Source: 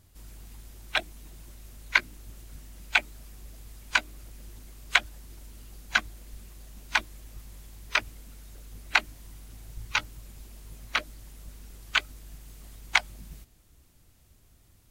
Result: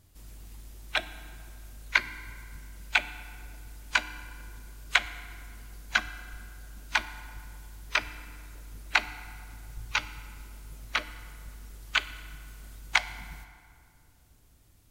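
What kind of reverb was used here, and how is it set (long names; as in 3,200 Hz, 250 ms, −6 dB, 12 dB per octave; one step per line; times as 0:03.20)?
feedback delay network reverb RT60 2.3 s, low-frequency decay 0.95×, high-frequency decay 0.6×, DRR 12 dB
level −1.5 dB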